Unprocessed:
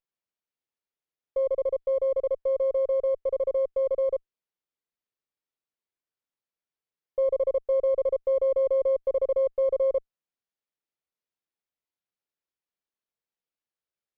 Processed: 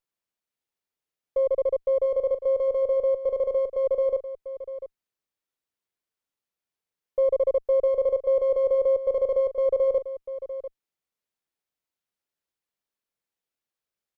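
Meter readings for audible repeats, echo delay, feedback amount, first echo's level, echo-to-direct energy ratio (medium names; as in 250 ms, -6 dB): 1, 695 ms, no regular repeats, -12.5 dB, -12.5 dB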